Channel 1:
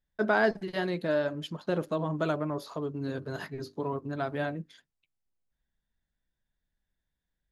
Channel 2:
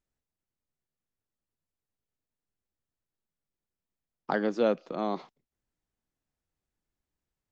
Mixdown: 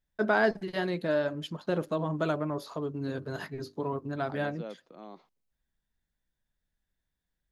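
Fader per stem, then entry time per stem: 0.0, -16.0 dB; 0.00, 0.00 s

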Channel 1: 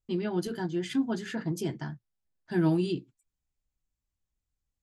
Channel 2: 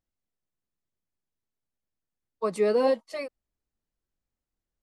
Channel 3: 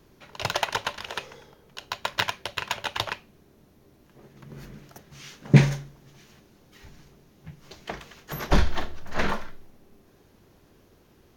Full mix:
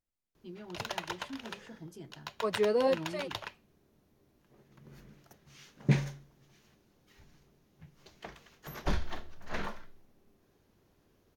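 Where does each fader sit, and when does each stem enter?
-16.0, -4.5, -11.0 dB; 0.35, 0.00, 0.35 s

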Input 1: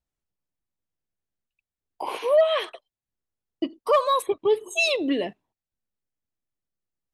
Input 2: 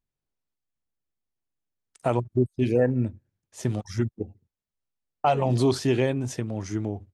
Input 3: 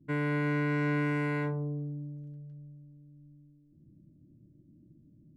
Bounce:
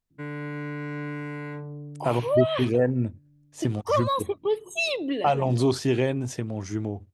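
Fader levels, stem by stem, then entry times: -4.0, -0.5, -4.0 dB; 0.00, 0.00, 0.10 s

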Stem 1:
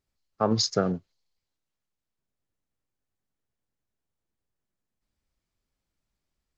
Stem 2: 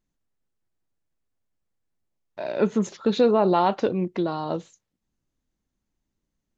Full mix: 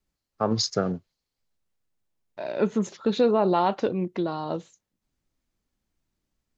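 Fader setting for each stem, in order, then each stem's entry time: -0.5, -2.0 dB; 0.00, 0.00 s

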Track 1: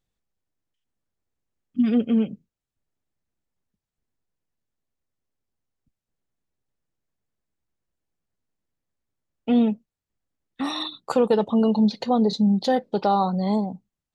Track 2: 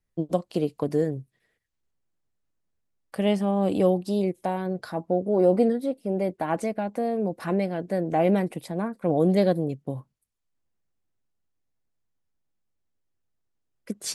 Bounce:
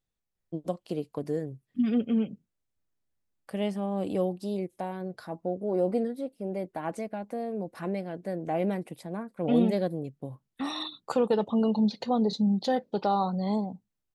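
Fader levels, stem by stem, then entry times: -5.5, -7.0 dB; 0.00, 0.35 s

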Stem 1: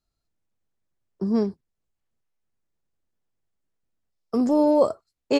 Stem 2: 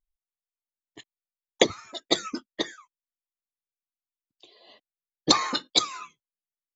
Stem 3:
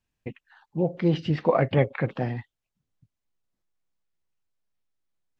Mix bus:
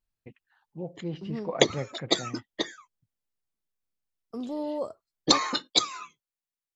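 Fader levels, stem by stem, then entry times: -13.5, -1.0, -12.0 dB; 0.00, 0.00, 0.00 s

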